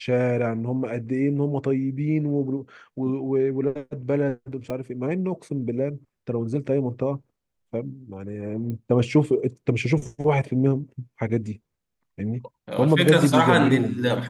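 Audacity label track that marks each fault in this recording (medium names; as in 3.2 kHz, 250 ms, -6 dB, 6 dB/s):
4.700000	4.700000	dropout 2.1 ms
8.700000	8.700000	pop -22 dBFS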